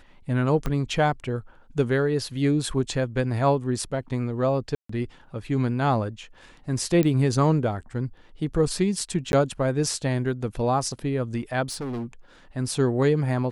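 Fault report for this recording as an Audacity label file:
0.660000	0.660000	pop -14 dBFS
4.750000	4.890000	gap 0.144 s
7.030000	7.030000	pop -12 dBFS
9.320000	9.330000	gap 11 ms
11.680000	12.050000	clipped -28 dBFS

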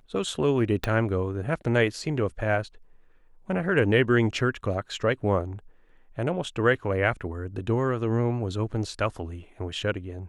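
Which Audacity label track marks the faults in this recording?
0.840000	0.840000	pop -12 dBFS

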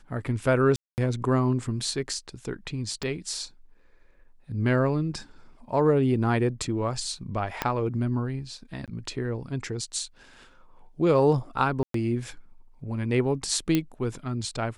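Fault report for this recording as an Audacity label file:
0.760000	0.980000	gap 0.219 s
3.030000	3.030000	pop -19 dBFS
7.620000	7.620000	pop -10 dBFS
8.860000	8.880000	gap 17 ms
11.830000	11.940000	gap 0.113 s
13.750000	13.750000	pop -10 dBFS

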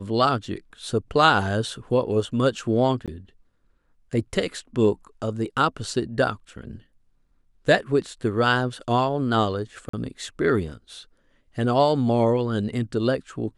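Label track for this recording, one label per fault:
3.060000	3.080000	gap 17 ms
9.890000	9.930000	gap 44 ms

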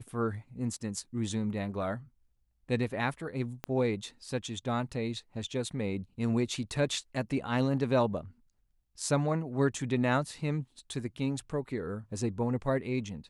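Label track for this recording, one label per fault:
3.640000	3.640000	pop -20 dBFS

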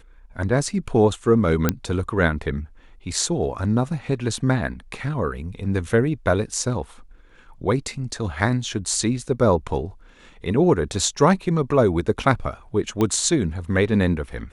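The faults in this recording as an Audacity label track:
1.690000	1.690000	pop -4 dBFS
13.010000	13.010000	pop -10 dBFS

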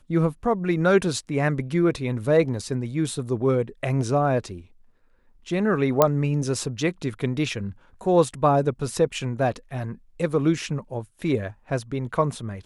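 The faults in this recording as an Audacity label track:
6.020000	6.020000	pop -3 dBFS

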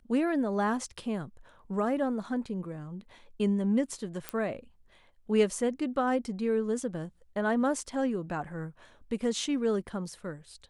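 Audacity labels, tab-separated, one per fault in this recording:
4.290000	4.290000	pop -16 dBFS

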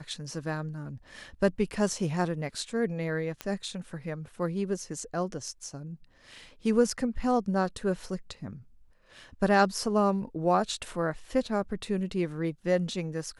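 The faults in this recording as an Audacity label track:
3.410000	3.410000	pop -18 dBFS

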